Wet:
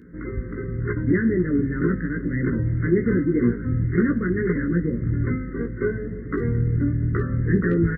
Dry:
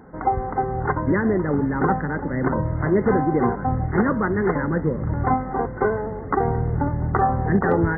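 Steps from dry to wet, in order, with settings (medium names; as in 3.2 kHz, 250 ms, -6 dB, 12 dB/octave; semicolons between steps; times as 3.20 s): Chebyshev band-stop 340–1900 Hz, order 2; doubling 17 ms -3 dB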